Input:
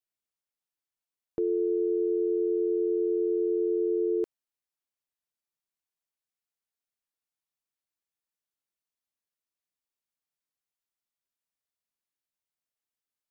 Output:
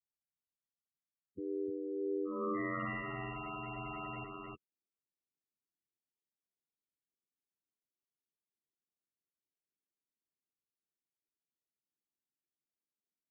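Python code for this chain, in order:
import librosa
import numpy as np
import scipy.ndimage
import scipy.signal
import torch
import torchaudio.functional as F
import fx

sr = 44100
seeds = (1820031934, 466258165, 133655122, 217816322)

y = fx.highpass(x, sr, hz=50.0, slope=6)
y = fx.tilt_shelf(y, sr, db=-6.0, hz=650.0)
y = fx.filter_sweep_lowpass(y, sr, from_hz=160.0, to_hz=380.0, start_s=1.96, end_s=3.04, q=0.92)
y = (np.mod(10.0 ** (34.0 / 20.0) * y + 1.0, 2.0) - 1.0) / 10.0 ** (34.0 / 20.0)
y = fx.spec_topn(y, sr, count=8)
y = y * np.sin(2.0 * np.pi * 46.0 * np.arange(len(y)) / sr)
y = fx.notch_comb(y, sr, f0_hz=530.0)
y = y + 10.0 ** (-3.5 / 20.0) * np.pad(y, (int(307 * sr / 1000.0), 0))[:len(y)]
y = y * librosa.db_to_amplitude(9.0)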